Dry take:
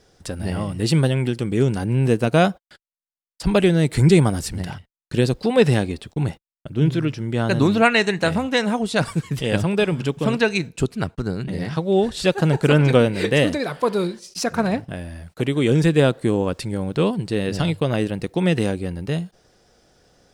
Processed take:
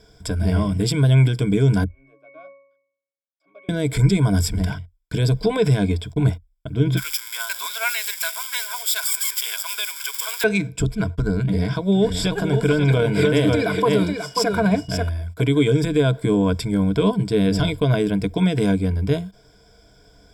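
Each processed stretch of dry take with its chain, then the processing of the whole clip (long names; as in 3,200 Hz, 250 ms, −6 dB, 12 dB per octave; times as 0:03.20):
0:01.84–0:03.69: high-pass filter 440 Hz 24 dB per octave + resonances in every octave C#, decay 0.7 s
0:06.97–0:10.44: spike at every zero crossing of −17 dBFS + high-pass filter 1,100 Hz 24 dB per octave + dynamic equaliser 1,400 Hz, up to −7 dB, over −33 dBFS, Q 0.81
0:11.94–0:15.08: steady tone 2,900 Hz −46 dBFS + single-tap delay 538 ms −7 dB
whole clip: low-shelf EQ 69 Hz +11.5 dB; brickwall limiter −12.5 dBFS; EQ curve with evenly spaced ripples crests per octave 1.7, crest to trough 15 dB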